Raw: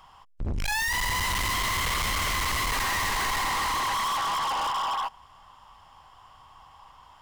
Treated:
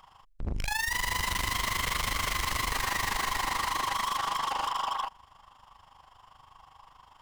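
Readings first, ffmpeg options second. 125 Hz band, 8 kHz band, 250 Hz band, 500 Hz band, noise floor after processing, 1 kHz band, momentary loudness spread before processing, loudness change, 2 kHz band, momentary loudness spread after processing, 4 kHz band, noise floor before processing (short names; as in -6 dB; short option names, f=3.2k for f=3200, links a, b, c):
-3.5 dB, -3.5 dB, -3.5 dB, -3.0 dB, -58 dBFS, -3.5 dB, 4 LU, -3.5 dB, -3.5 dB, 4 LU, -3.5 dB, -54 dBFS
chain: -af "tremolo=f=25:d=0.75"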